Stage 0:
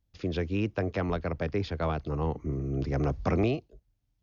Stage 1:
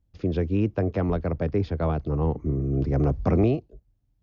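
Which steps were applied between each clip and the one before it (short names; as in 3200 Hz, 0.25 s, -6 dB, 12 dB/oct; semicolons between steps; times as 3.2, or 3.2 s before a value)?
tilt shelf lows +6.5 dB, about 1100 Hz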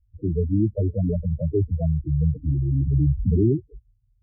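loudest bins only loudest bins 4; gain +5.5 dB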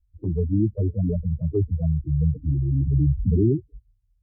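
envelope flanger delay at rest 3.9 ms, full sweep at -17.5 dBFS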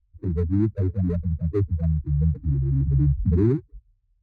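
median filter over 41 samples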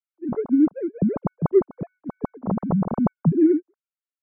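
sine-wave speech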